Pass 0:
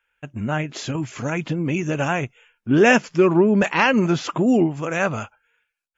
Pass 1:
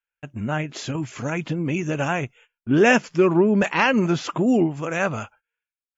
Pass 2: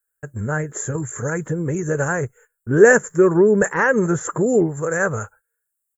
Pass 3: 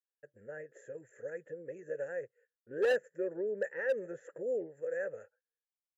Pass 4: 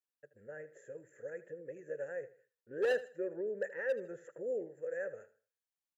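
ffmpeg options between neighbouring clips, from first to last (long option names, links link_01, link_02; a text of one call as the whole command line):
ffmpeg -i in.wav -af "agate=range=-18dB:threshold=-48dB:ratio=16:detection=peak,volume=-1.5dB" out.wav
ffmpeg -i in.wav -af "firequalizer=gain_entry='entry(100,0);entry(270,-12);entry(450,4);entry(670,-10);entry(1700,0);entry(2500,-27);entry(4700,-26);entry(7500,13)':delay=0.05:min_phase=1,volume=6.5dB" out.wav
ffmpeg -i in.wav -filter_complex "[0:a]asplit=3[link_01][link_02][link_03];[link_01]bandpass=frequency=530:width_type=q:width=8,volume=0dB[link_04];[link_02]bandpass=frequency=1840:width_type=q:width=8,volume=-6dB[link_05];[link_03]bandpass=frequency=2480:width_type=q:width=8,volume=-9dB[link_06];[link_04][link_05][link_06]amix=inputs=3:normalize=0,volume=15dB,asoftclip=hard,volume=-15dB,volume=-9dB" out.wav
ffmpeg -i in.wav -af "aecho=1:1:78|156|234:0.158|0.0475|0.0143,volume=-2.5dB" out.wav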